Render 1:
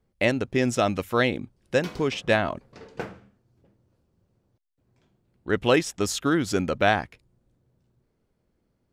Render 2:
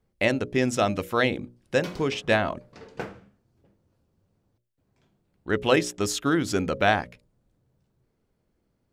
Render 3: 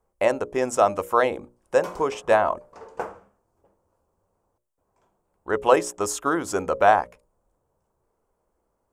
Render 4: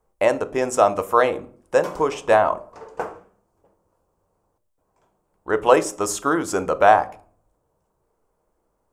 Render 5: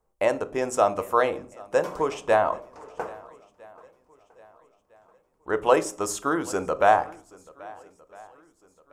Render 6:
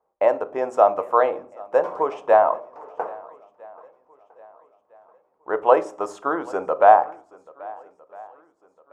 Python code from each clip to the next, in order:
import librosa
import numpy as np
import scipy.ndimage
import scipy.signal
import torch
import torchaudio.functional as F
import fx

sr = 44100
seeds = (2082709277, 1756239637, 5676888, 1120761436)

y1 = fx.hum_notches(x, sr, base_hz=60, count=10)
y2 = fx.graphic_eq(y1, sr, hz=(125, 250, 500, 1000, 2000, 4000, 8000), db=(-11, -6, 4, 11, -5, -11, 6))
y3 = fx.room_shoebox(y2, sr, seeds[0], volume_m3=530.0, walls='furnished', distance_m=0.49)
y3 = y3 * 10.0 ** (2.5 / 20.0)
y4 = fx.echo_swing(y3, sr, ms=1306, ratio=1.5, feedback_pct=33, wet_db=-23)
y4 = y4 * 10.0 ** (-4.5 / 20.0)
y5 = fx.bandpass_q(y4, sr, hz=750.0, q=1.3)
y5 = y5 * 10.0 ** (6.5 / 20.0)